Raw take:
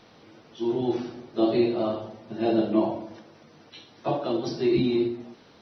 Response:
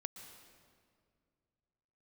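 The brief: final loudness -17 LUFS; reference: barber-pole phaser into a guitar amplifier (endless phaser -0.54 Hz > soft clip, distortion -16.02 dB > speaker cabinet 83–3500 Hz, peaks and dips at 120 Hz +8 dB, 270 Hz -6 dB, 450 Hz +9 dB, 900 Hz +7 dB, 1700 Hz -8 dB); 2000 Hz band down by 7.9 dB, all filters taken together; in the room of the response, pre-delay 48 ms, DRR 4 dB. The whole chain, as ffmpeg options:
-filter_complex "[0:a]equalizer=f=2k:t=o:g=-8.5,asplit=2[a][b];[1:a]atrim=start_sample=2205,adelay=48[c];[b][c]afir=irnorm=-1:irlink=0,volume=-1dB[d];[a][d]amix=inputs=2:normalize=0,asplit=2[e][f];[f]afreqshift=-0.54[g];[e][g]amix=inputs=2:normalize=1,asoftclip=threshold=-20dB,highpass=83,equalizer=f=120:t=q:w=4:g=8,equalizer=f=270:t=q:w=4:g=-6,equalizer=f=450:t=q:w=4:g=9,equalizer=f=900:t=q:w=4:g=7,equalizer=f=1.7k:t=q:w=4:g=-8,lowpass=f=3.5k:w=0.5412,lowpass=f=3.5k:w=1.3066,volume=13dB"

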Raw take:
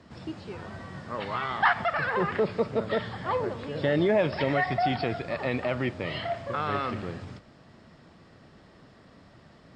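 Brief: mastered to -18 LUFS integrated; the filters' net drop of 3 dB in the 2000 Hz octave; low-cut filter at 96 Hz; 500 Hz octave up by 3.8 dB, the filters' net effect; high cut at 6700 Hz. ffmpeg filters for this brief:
-af "highpass=96,lowpass=6.7k,equalizer=f=500:t=o:g=5,equalizer=f=2k:t=o:g=-4,volume=8.5dB"

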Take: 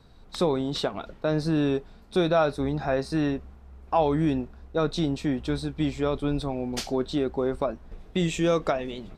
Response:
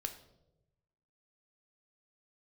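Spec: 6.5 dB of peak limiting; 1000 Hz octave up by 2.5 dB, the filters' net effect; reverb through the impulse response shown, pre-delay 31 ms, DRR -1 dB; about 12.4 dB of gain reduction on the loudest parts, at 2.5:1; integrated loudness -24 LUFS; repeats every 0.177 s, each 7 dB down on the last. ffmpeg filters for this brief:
-filter_complex "[0:a]equalizer=f=1k:t=o:g=3.5,acompressor=threshold=-35dB:ratio=2.5,alimiter=level_in=2dB:limit=-24dB:level=0:latency=1,volume=-2dB,aecho=1:1:177|354|531|708|885:0.447|0.201|0.0905|0.0407|0.0183,asplit=2[a][b];[1:a]atrim=start_sample=2205,adelay=31[c];[b][c]afir=irnorm=-1:irlink=0,volume=2dB[d];[a][d]amix=inputs=2:normalize=0,volume=8.5dB"

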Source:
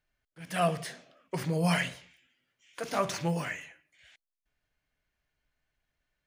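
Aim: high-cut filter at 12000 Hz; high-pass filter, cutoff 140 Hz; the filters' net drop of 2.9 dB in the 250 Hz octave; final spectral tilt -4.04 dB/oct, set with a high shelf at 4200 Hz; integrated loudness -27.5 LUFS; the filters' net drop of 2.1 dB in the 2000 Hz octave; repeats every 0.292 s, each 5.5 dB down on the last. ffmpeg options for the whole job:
-af "highpass=140,lowpass=12k,equalizer=f=250:t=o:g=-3,equalizer=f=2k:t=o:g=-4,highshelf=f=4.2k:g=7,aecho=1:1:292|584|876|1168|1460|1752|2044:0.531|0.281|0.149|0.079|0.0419|0.0222|0.0118,volume=5dB"

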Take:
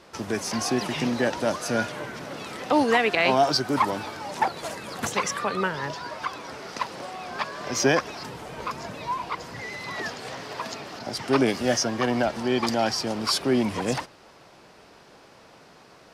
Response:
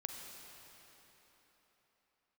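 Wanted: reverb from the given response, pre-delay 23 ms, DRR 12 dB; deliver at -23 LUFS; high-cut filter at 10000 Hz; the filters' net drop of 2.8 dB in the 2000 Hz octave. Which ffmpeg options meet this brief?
-filter_complex "[0:a]lowpass=10k,equalizer=f=2k:t=o:g=-3.5,asplit=2[a][b];[1:a]atrim=start_sample=2205,adelay=23[c];[b][c]afir=irnorm=-1:irlink=0,volume=-10.5dB[d];[a][d]amix=inputs=2:normalize=0,volume=4dB"

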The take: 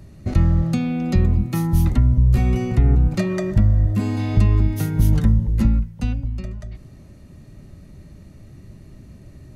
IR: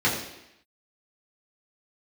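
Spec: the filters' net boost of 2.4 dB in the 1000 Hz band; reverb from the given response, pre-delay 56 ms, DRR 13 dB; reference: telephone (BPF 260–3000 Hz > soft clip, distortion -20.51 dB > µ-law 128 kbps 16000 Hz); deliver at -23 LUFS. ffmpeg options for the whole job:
-filter_complex "[0:a]equalizer=f=1k:t=o:g=3.5,asplit=2[a][b];[1:a]atrim=start_sample=2205,adelay=56[c];[b][c]afir=irnorm=-1:irlink=0,volume=-28dB[d];[a][d]amix=inputs=2:normalize=0,highpass=260,lowpass=3k,asoftclip=threshold=-18.5dB,volume=6.5dB" -ar 16000 -c:a pcm_mulaw

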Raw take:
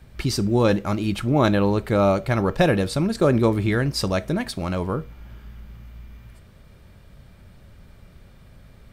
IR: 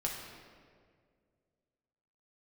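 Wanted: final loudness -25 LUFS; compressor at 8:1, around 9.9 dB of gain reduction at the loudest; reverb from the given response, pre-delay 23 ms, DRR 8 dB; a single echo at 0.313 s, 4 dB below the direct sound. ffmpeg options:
-filter_complex "[0:a]acompressor=threshold=-23dB:ratio=8,aecho=1:1:313:0.631,asplit=2[a][b];[1:a]atrim=start_sample=2205,adelay=23[c];[b][c]afir=irnorm=-1:irlink=0,volume=-11dB[d];[a][d]amix=inputs=2:normalize=0,volume=1.5dB"

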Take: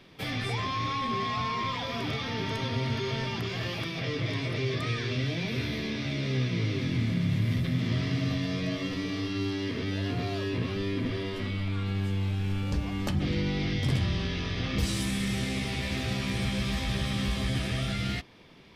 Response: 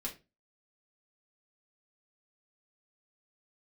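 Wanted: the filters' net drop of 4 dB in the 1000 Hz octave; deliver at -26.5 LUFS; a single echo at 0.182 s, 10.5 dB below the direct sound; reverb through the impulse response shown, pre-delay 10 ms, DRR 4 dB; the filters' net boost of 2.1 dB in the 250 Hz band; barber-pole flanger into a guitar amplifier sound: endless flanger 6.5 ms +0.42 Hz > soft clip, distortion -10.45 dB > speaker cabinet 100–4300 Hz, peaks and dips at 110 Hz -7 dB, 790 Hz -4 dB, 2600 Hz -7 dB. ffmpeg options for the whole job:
-filter_complex "[0:a]equalizer=f=250:t=o:g=3.5,equalizer=f=1k:t=o:g=-3.5,aecho=1:1:182:0.299,asplit=2[a][b];[1:a]atrim=start_sample=2205,adelay=10[c];[b][c]afir=irnorm=-1:irlink=0,volume=-4dB[d];[a][d]amix=inputs=2:normalize=0,asplit=2[e][f];[f]adelay=6.5,afreqshift=0.42[g];[e][g]amix=inputs=2:normalize=1,asoftclip=threshold=-29dB,highpass=100,equalizer=f=110:t=q:w=4:g=-7,equalizer=f=790:t=q:w=4:g=-4,equalizer=f=2.6k:t=q:w=4:g=-7,lowpass=f=4.3k:w=0.5412,lowpass=f=4.3k:w=1.3066,volume=9.5dB"

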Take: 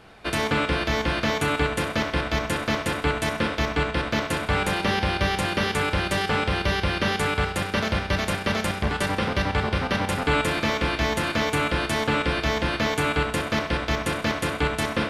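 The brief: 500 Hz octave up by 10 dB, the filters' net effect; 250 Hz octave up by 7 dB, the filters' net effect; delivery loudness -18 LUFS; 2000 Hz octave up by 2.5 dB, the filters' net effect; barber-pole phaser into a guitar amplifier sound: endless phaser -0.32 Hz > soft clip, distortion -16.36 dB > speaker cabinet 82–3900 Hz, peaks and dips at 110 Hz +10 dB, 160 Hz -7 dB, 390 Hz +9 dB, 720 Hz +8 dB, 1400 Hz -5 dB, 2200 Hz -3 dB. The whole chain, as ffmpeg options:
-filter_complex "[0:a]equalizer=f=250:t=o:g=6.5,equalizer=f=500:t=o:g=4,equalizer=f=2k:t=o:g=6,asplit=2[a][b];[b]afreqshift=-0.32[c];[a][c]amix=inputs=2:normalize=1,asoftclip=threshold=-16.5dB,highpass=82,equalizer=f=110:t=q:w=4:g=10,equalizer=f=160:t=q:w=4:g=-7,equalizer=f=390:t=q:w=4:g=9,equalizer=f=720:t=q:w=4:g=8,equalizer=f=1.4k:t=q:w=4:g=-5,equalizer=f=2.2k:t=q:w=4:g=-3,lowpass=f=3.9k:w=0.5412,lowpass=f=3.9k:w=1.3066,volume=5.5dB"

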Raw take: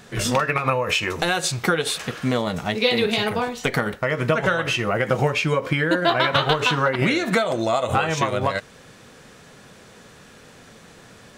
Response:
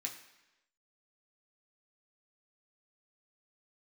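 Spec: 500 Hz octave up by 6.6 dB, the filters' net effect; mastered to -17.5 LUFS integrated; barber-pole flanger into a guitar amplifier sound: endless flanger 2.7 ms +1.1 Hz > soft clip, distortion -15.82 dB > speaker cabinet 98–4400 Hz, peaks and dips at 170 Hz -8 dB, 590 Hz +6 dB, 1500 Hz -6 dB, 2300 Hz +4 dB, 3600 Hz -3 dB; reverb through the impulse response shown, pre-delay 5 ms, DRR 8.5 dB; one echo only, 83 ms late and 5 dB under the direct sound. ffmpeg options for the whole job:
-filter_complex "[0:a]equalizer=f=500:t=o:g=4.5,aecho=1:1:83:0.562,asplit=2[a][b];[1:a]atrim=start_sample=2205,adelay=5[c];[b][c]afir=irnorm=-1:irlink=0,volume=-7.5dB[d];[a][d]amix=inputs=2:normalize=0,asplit=2[e][f];[f]adelay=2.7,afreqshift=1.1[g];[e][g]amix=inputs=2:normalize=1,asoftclip=threshold=-14.5dB,highpass=98,equalizer=f=170:t=q:w=4:g=-8,equalizer=f=590:t=q:w=4:g=6,equalizer=f=1.5k:t=q:w=4:g=-6,equalizer=f=2.3k:t=q:w=4:g=4,equalizer=f=3.6k:t=q:w=4:g=-3,lowpass=f=4.4k:w=0.5412,lowpass=f=4.4k:w=1.3066,volume=4.5dB"

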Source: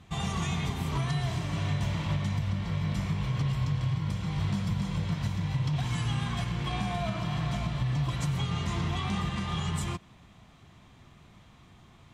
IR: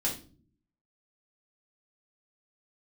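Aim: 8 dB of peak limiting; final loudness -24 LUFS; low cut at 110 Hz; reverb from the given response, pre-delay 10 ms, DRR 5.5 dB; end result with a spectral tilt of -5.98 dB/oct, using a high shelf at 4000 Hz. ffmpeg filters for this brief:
-filter_complex "[0:a]highpass=110,highshelf=f=4k:g=-8.5,alimiter=level_in=4.5dB:limit=-24dB:level=0:latency=1,volume=-4.5dB,asplit=2[a][b];[1:a]atrim=start_sample=2205,adelay=10[c];[b][c]afir=irnorm=-1:irlink=0,volume=-11dB[d];[a][d]amix=inputs=2:normalize=0,volume=11.5dB"

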